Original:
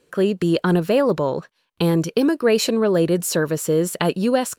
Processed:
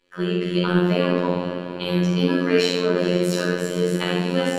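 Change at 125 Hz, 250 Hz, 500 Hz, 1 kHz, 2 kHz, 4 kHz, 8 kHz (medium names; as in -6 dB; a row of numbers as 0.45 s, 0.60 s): 0.0 dB, -1.5 dB, -2.5 dB, -2.5 dB, +1.5 dB, +2.0 dB, -9.0 dB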